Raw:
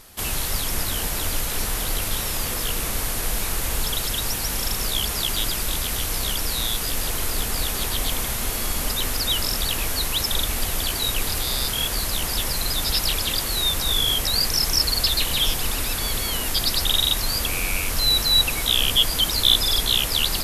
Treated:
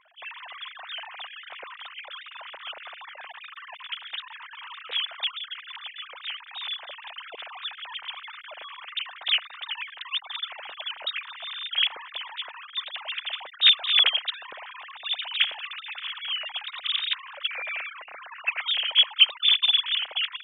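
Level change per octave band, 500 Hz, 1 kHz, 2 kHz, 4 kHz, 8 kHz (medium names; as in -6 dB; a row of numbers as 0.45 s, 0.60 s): -15.5 dB, -7.5 dB, -1.5 dB, -3.0 dB, under -40 dB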